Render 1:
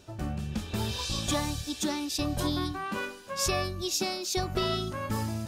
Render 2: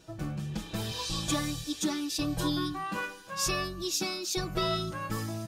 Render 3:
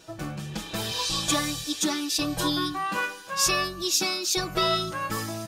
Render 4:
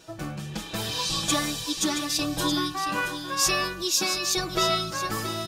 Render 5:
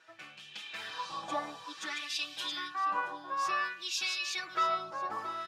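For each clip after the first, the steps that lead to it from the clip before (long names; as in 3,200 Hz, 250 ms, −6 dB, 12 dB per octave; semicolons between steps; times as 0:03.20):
comb filter 6.2 ms, depth 92%; level −3.5 dB
low-shelf EQ 300 Hz −10 dB; level +7.5 dB
single-tap delay 674 ms −9.5 dB
auto-filter band-pass sine 0.55 Hz 820–3,000 Hz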